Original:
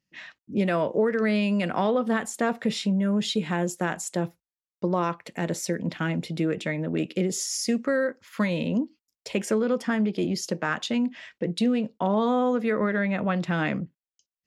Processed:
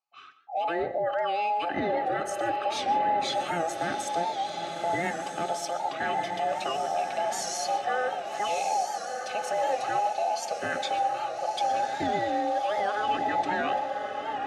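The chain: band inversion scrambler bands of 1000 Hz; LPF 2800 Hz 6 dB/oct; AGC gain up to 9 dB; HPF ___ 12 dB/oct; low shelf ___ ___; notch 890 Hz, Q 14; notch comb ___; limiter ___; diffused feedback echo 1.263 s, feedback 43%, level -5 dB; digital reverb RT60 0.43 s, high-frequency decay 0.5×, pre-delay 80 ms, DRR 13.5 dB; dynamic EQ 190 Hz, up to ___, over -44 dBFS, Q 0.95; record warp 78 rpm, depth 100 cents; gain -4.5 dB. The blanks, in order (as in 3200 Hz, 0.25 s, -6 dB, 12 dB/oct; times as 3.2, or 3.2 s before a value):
120 Hz, 400 Hz, -8.5 dB, 470 Hz, -17 dBFS, +5 dB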